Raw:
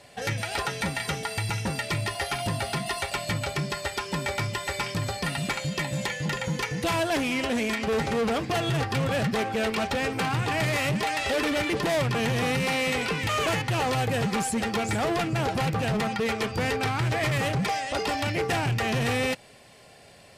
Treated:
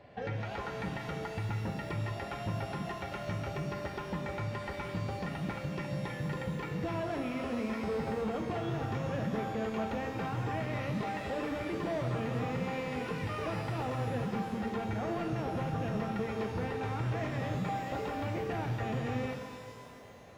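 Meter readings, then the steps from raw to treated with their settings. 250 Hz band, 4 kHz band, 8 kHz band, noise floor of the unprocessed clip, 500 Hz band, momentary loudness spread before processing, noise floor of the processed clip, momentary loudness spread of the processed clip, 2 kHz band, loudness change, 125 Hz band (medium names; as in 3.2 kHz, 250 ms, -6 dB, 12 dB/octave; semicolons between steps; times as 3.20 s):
-6.0 dB, -17.0 dB, -20.5 dB, -52 dBFS, -7.5 dB, 4 LU, -45 dBFS, 4 LU, -13.0 dB, -8.5 dB, -6.5 dB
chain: compression, threshold -32 dBFS, peak gain reduction 8.5 dB; tape spacing loss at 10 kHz 42 dB; pitch-shifted reverb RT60 2.1 s, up +12 st, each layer -8 dB, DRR 4.5 dB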